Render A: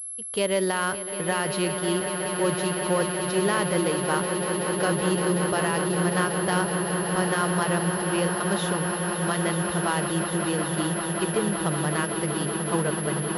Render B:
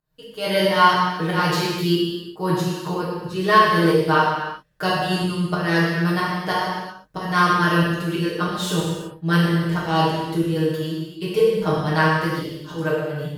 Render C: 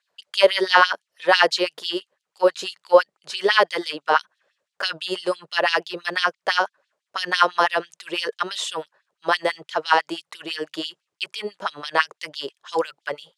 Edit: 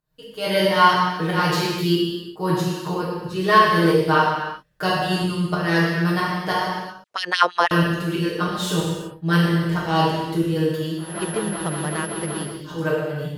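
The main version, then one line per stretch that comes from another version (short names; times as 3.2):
B
7.04–7.71 from C
11.08–12.51 from A, crossfade 0.24 s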